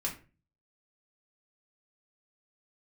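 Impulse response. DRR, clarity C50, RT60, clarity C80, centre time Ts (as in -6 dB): -2.0 dB, 10.5 dB, 0.35 s, 15.5 dB, 18 ms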